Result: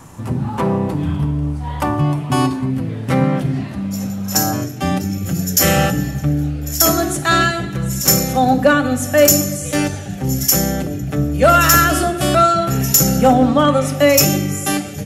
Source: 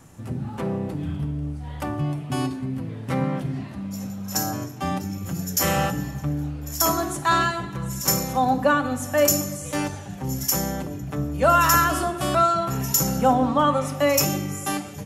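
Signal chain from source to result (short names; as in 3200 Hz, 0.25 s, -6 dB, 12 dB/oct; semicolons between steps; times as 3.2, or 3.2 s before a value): bell 1000 Hz +8.5 dB 0.37 oct, from 2.71 s -3.5 dB, from 4.61 s -14.5 dB; overloaded stage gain 12.5 dB; gain +9 dB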